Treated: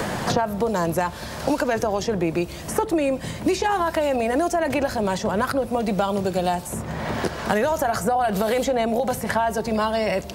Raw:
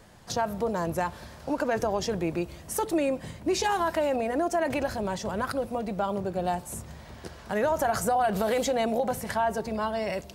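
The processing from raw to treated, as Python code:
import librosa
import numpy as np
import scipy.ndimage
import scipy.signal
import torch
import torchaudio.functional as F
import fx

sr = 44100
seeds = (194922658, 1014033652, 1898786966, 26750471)

y = fx.band_squash(x, sr, depth_pct=100)
y = y * 10.0 ** (4.5 / 20.0)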